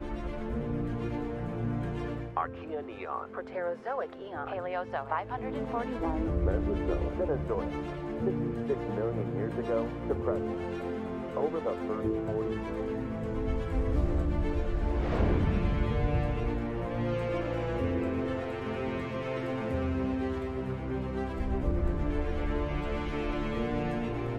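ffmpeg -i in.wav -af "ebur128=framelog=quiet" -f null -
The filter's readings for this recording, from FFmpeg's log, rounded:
Integrated loudness:
  I:         -32.7 LUFS
  Threshold: -42.7 LUFS
Loudness range:
  LRA:         4.7 LU
  Threshold: -52.6 LUFS
  LRA low:   -35.2 LUFS
  LRA high:  -30.5 LUFS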